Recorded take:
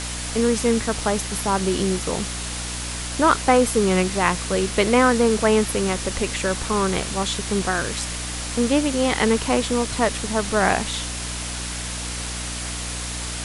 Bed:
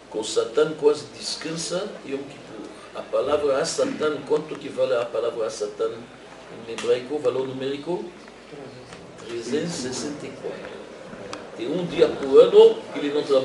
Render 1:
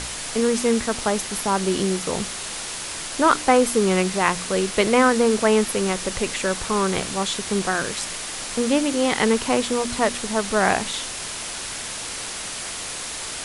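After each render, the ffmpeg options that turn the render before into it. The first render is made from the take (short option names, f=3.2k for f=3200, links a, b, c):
-af "bandreject=f=60:t=h:w=4,bandreject=f=120:t=h:w=4,bandreject=f=180:t=h:w=4,bandreject=f=240:t=h:w=4,bandreject=f=300:t=h:w=4"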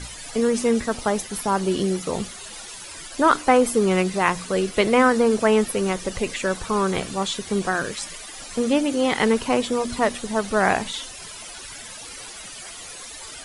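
-af "afftdn=nr=14:nf=-32"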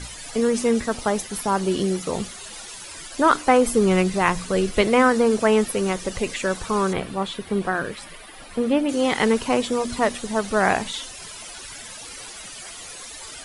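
-filter_complex "[0:a]asettb=1/sr,asplit=3[a][b][c];[a]atrim=end=3.674[d];[b]atrim=start=3.67:end=4.83,asetpts=PTS-STARTPTS,afade=t=in:d=0.004:c=qsin,afade=t=out:st=1.156:d=0.004:c=qsin,lowshelf=f=100:g=11.5[e];[c]atrim=start=4.826[f];[d][e]acrossfade=d=0.004:c1=hsin:c2=qsin[g];[g][f]acrossfade=d=0.004:c1=qsin:c2=hsin,asettb=1/sr,asplit=3[h][i][j];[h]atrim=end=6.934[k];[i]atrim=start=6.93:end=8.89,asetpts=PTS-STARTPTS,afade=t=in:d=0.004:c=qsin,afade=t=out:st=1.956:d=0.004:c=qsin,equalizer=f=6.6k:t=o:w=1.2:g=-14.5[l];[j]atrim=start=8.886[m];[k][l]acrossfade=d=0.004:c1=hsin:c2=qsin[n];[n][m]acrossfade=d=0.004:c1=qsin:c2=hsin"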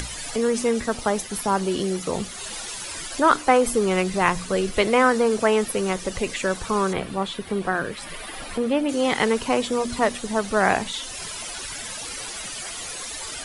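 -filter_complex "[0:a]acrossover=split=370[a][b];[a]alimiter=limit=-22.5dB:level=0:latency=1[c];[c][b]amix=inputs=2:normalize=0,acompressor=mode=upward:threshold=-26dB:ratio=2.5"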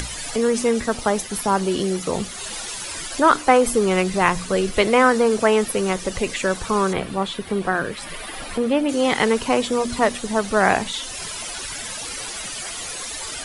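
-af "volume=2.5dB,alimiter=limit=-2dB:level=0:latency=1"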